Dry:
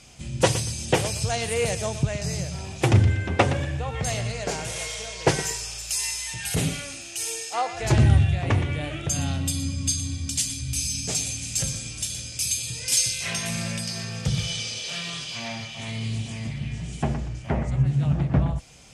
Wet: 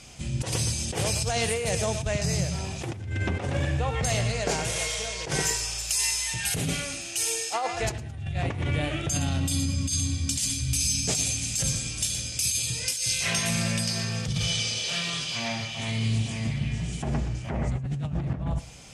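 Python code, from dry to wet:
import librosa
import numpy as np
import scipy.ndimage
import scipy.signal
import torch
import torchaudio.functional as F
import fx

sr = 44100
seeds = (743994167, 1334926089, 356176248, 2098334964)

y = fx.over_compress(x, sr, threshold_db=-27.0, ratio=-1.0)
y = fx.echo_feedback(y, sr, ms=108, feedback_pct=37, wet_db=-18)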